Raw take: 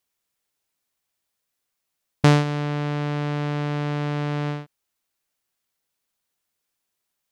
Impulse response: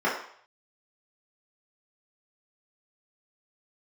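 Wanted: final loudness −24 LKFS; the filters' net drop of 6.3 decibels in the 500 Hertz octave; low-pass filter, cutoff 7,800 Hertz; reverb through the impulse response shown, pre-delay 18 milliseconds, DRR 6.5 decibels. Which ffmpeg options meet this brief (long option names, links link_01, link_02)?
-filter_complex "[0:a]lowpass=7800,equalizer=frequency=500:width_type=o:gain=-7.5,asplit=2[link_01][link_02];[1:a]atrim=start_sample=2205,adelay=18[link_03];[link_02][link_03]afir=irnorm=-1:irlink=0,volume=-21.5dB[link_04];[link_01][link_04]amix=inputs=2:normalize=0,volume=0.5dB"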